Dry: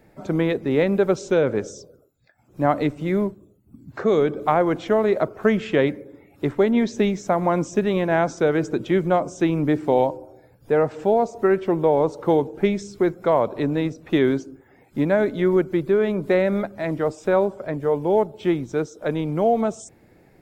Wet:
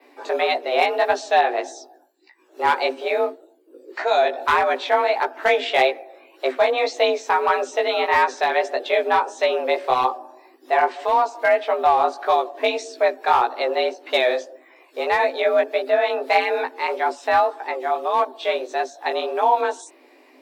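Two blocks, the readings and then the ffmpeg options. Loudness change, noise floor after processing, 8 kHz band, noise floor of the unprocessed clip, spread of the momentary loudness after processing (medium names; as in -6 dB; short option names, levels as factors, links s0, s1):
+1.0 dB, -53 dBFS, no reading, -56 dBFS, 7 LU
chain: -af "afreqshift=250,equalizer=f=125:t=o:w=1:g=9,equalizer=f=250:t=o:w=1:g=6,equalizer=f=500:t=o:w=1:g=-5,equalizer=f=2000:t=o:w=1:g=4,equalizer=f=4000:t=o:w=1:g=9,asoftclip=type=hard:threshold=0.282,flanger=delay=15:depth=4.5:speed=1.7,adynamicequalizer=threshold=0.002:dfrequency=7100:dqfactor=1.7:tfrequency=7100:tqfactor=1.7:attack=5:release=100:ratio=0.375:range=3.5:mode=cutabove:tftype=bell,volume=1.68"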